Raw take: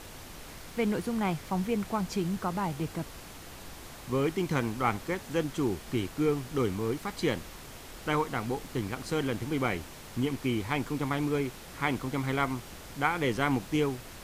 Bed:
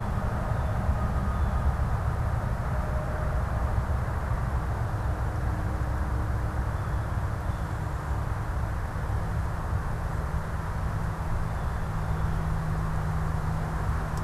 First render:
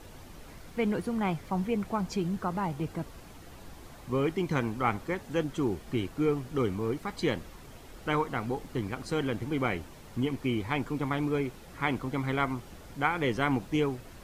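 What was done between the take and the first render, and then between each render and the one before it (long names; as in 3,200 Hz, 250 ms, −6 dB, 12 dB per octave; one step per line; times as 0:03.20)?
broadband denoise 8 dB, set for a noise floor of −46 dBFS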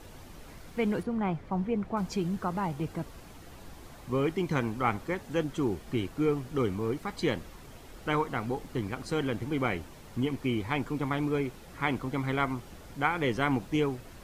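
0:01.03–0:01.97: low-pass filter 1,500 Hz 6 dB per octave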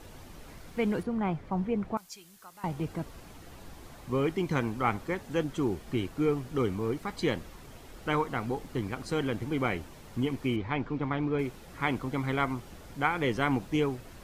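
0:01.97–0:02.64: first-order pre-emphasis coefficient 0.97
0:10.56–0:11.39: high-frequency loss of the air 190 metres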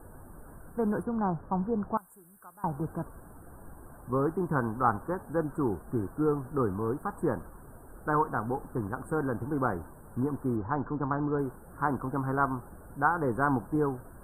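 Chebyshev band-stop filter 1,600–8,400 Hz, order 5
dynamic equaliser 1,000 Hz, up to +5 dB, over −47 dBFS, Q 1.2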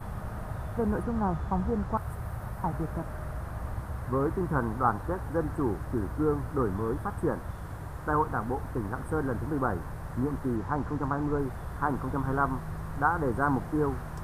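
mix in bed −8.5 dB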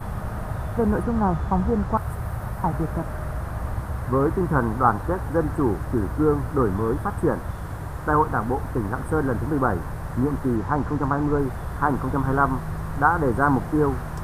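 level +7 dB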